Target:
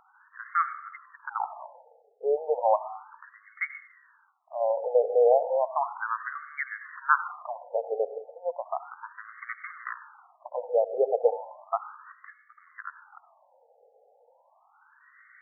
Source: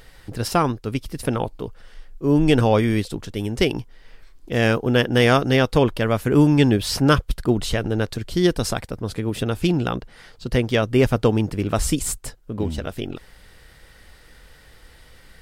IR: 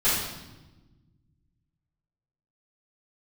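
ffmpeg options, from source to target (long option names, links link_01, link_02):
-filter_complex "[0:a]asettb=1/sr,asplit=3[link_01][link_02][link_03];[link_01]atrim=end=8.964[link_04];[link_02]atrim=start=8.96:end=10.56,asetpts=PTS-STARTPTS,afade=type=in:duration=0.004:curve=qsin,afade=type=out:start_time=1.596:duration=0.004:curve=qsin,aeval=exprs='abs(val(0))':channel_layout=same[link_05];[link_03]atrim=start=10.556[link_06];[link_04][link_05]acrossfade=duration=0.004:curve1=hsin:curve2=qsin[link_07];[link_07][link_06]acrossfade=duration=0.004:curve1=qsin:curve2=hsin,asplit=2[link_08][link_09];[1:a]atrim=start_sample=2205,adelay=67[link_10];[link_09][link_10]afir=irnorm=-1:irlink=0,volume=-25.5dB[link_11];[link_08][link_11]amix=inputs=2:normalize=0,afftfilt=real='re*between(b*sr/1024,590*pow(1600/590,0.5+0.5*sin(2*PI*0.34*pts/sr))/1.41,590*pow(1600/590,0.5+0.5*sin(2*PI*0.34*pts/sr))*1.41)':imag='im*between(b*sr/1024,590*pow(1600/590,0.5+0.5*sin(2*PI*0.34*pts/sr))/1.41,590*pow(1600/590,0.5+0.5*sin(2*PI*0.34*pts/sr))*1.41)':win_size=1024:overlap=0.75"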